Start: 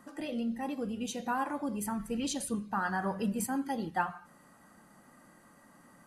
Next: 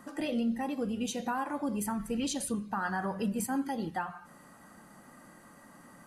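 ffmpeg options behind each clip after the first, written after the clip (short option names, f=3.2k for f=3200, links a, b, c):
-af "alimiter=level_in=4dB:limit=-24dB:level=0:latency=1:release=311,volume=-4dB,volume=4.5dB"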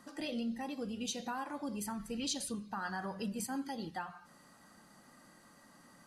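-af "equalizer=f=4.6k:w=1.1:g=10,volume=-7dB"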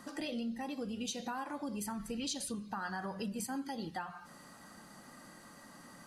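-af "acompressor=threshold=-47dB:ratio=2,volume=6dB"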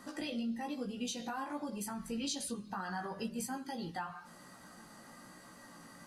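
-af "flanger=delay=16:depth=2.1:speed=1.1,volume=3dB"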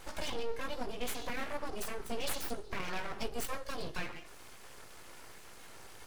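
-af "aeval=exprs='abs(val(0))':c=same,volume=4.5dB"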